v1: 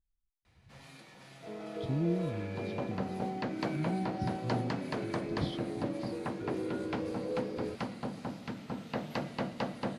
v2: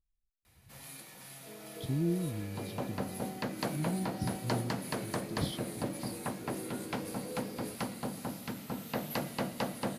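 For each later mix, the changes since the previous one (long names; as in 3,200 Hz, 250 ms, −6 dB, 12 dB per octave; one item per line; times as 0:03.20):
second sound −7.5 dB
master: remove high-frequency loss of the air 110 metres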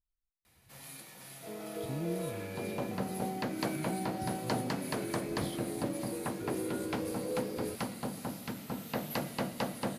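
speech −6.0 dB
second sound +7.0 dB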